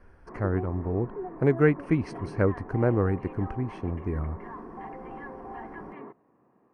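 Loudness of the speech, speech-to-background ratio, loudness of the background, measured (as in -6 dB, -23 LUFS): -28.0 LUFS, 13.0 dB, -41.0 LUFS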